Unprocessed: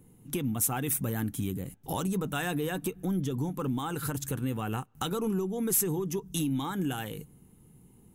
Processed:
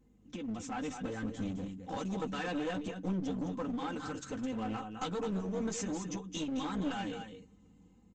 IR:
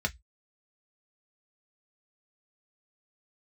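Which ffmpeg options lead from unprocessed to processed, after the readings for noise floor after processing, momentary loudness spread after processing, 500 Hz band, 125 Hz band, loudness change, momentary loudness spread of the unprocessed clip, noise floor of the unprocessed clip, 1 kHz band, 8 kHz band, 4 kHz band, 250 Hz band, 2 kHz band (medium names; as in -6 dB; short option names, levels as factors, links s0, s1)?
-63 dBFS, 6 LU, -5.0 dB, -10.0 dB, -6.5 dB, 8 LU, -58 dBFS, -3.5 dB, -13.0 dB, -4.5 dB, -4.0 dB, -4.5 dB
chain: -filter_complex "[0:a]highpass=64,aecho=1:1:3.9:0.87,dynaudnorm=f=490:g=3:m=1.78,flanger=delay=8.5:depth=2.8:regen=-25:speed=0.47:shape=triangular,asplit=2[s0][s1];[s1]aecho=0:1:213:0.376[s2];[s0][s2]amix=inputs=2:normalize=0,aeval=exprs='val(0)+0.000891*(sin(2*PI*50*n/s)+sin(2*PI*2*50*n/s)/2+sin(2*PI*3*50*n/s)/3+sin(2*PI*4*50*n/s)/4+sin(2*PI*5*50*n/s)/5)':c=same,aresample=16000,aeval=exprs='clip(val(0),-1,0.0316)':c=same,aresample=44100,volume=0.473" -ar 48000 -c:a libopus -b:a 32k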